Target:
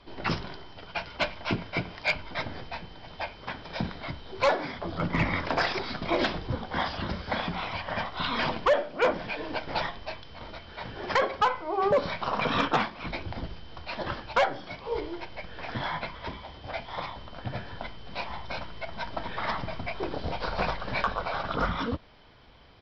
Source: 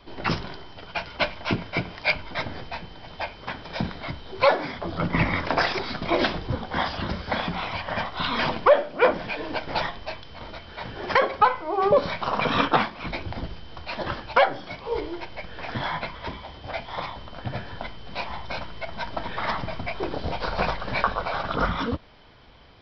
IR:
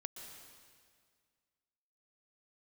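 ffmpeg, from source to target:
-af "volume=13.5dB,asoftclip=hard,volume=-13.5dB,acontrast=31,aresample=16000,aresample=44100,volume=-8.5dB"

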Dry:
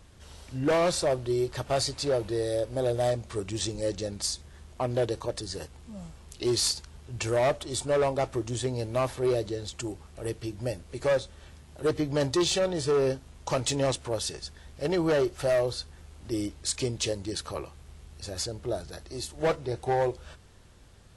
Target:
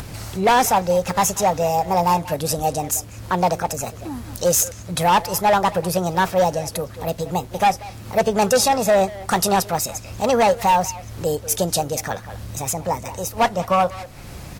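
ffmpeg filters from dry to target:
-filter_complex "[0:a]asetrate=63945,aresample=44100,asplit=2[a][b];[b]adelay=190,highpass=300,lowpass=3.4k,asoftclip=type=hard:threshold=-28.5dB,volume=-13dB[c];[a][c]amix=inputs=2:normalize=0,acompressor=mode=upward:threshold=-33dB:ratio=2.5,volume=9dB"

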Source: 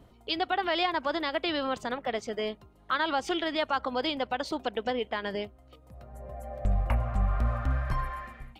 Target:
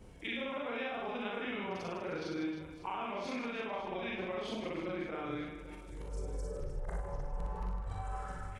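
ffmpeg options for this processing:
-af "afftfilt=real='re':imag='-im':win_size=4096:overlap=0.75,highshelf=f=6.6k:g=7,acompressor=threshold=-43dB:ratio=8,asetrate=32097,aresample=44100,atempo=1.37395,aecho=1:1:60|156|309.6|555.4|948.6:0.631|0.398|0.251|0.158|0.1,volume=5.5dB"

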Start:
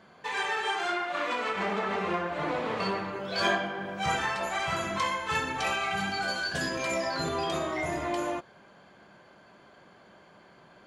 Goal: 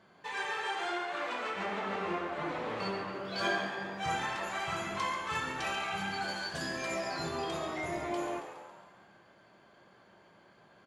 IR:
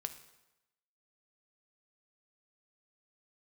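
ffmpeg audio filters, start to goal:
-filter_complex "[0:a]asplit=7[a][b][c][d][e][f][g];[b]adelay=138,afreqshift=81,volume=-10dB[h];[c]adelay=276,afreqshift=162,volume=-15.2dB[i];[d]adelay=414,afreqshift=243,volume=-20.4dB[j];[e]adelay=552,afreqshift=324,volume=-25.6dB[k];[f]adelay=690,afreqshift=405,volume=-30.8dB[l];[g]adelay=828,afreqshift=486,volume=-36dB[m];[a][h][i][j][k][l][m]amix=inputs=7:normalize=0[n];[1:a]atrim=start_sample=2205,asetrate=34398,aresample=44100[o];[n][o]afir=irnorm=-1:irlink=0,volume=-5.5dB"

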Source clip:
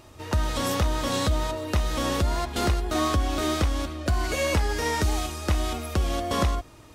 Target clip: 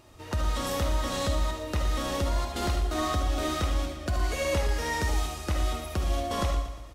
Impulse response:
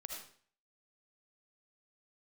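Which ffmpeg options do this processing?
-filter_complex "[0:a]aecho=1:1:117|234|351|468|585|702:0.282|0.149|0.0792|0.042|0.0222|0.0118[a];[1:a]atrim=start_sample=2205,atrim=end_sample=3528[b];[a][b]afir=irnorm=-1:irlink=0"

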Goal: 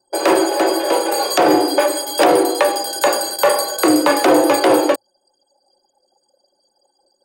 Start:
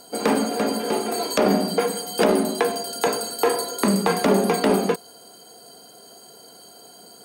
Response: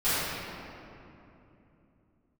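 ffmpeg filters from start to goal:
-af "apsyclip=12.5dB,afreqshift=110,anlmdn=1580,volume=-5.5dB"

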